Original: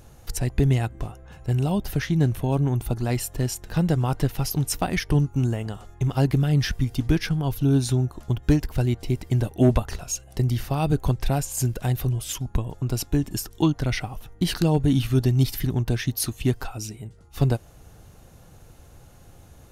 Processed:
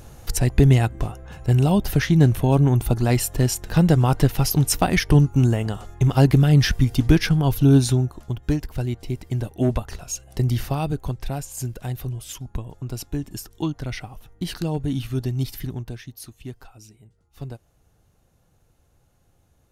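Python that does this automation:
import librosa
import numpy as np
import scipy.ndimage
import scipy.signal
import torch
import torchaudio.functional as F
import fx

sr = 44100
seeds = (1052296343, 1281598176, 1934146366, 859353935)

y = fx.gain(x, sr, db=fx.line((7.77, 5.5), (8.32, -3.0), (9.86, -3.0), (10.65, 3.0), (10.97, -5.0), (15.68, -5.0), (16.08, -13.5)))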